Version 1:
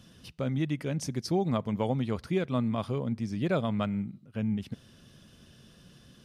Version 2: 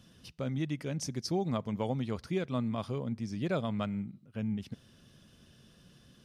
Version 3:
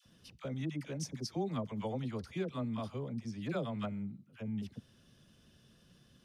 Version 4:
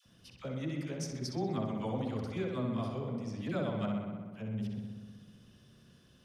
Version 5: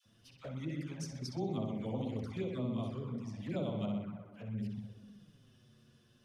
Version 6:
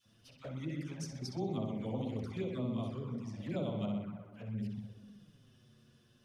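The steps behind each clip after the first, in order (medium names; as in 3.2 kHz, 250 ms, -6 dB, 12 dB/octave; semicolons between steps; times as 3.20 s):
dynamic bell 5.7 kHz, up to +5 dB, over -59 dBFS, Q 1.5; trim -4 dB
phase dispersion lows, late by 58 ms, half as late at 730 Hz; trim -4.5 dB
filtered feedback delay 63 ms, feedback 77%, low-pass 4.3 kHz, level -4 dB
touch-sensitive flanger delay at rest 10 ms, full sweep at -31 dBFS; trim -1.5 dB
reverse echo 161 ms -22.5 dB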